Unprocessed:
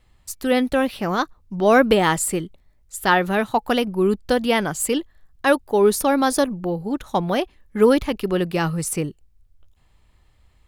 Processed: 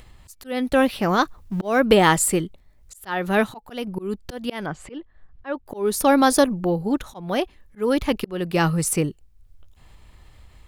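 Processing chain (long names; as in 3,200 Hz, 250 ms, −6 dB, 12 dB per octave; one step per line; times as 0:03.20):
0:01.22–0:01.80: mu-law and A-law mismatch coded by mu
0:04.66–0:05.66: low-pass filter 2,400 Hz 12 dB per octave
volume swells 361 ms
upward compression, threshold −41 dBFS
level +2.5 dB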